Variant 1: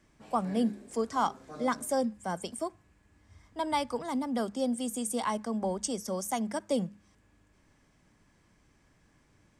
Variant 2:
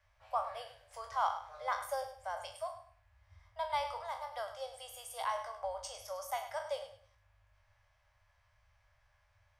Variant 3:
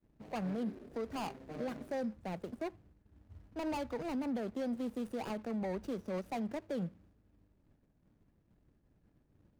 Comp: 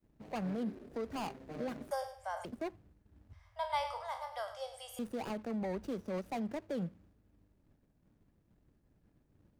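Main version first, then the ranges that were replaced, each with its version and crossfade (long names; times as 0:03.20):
3
0:01.91–0:02.45: punch in from 2
0:03.33–0:04.99: punch in from 2
not used: 1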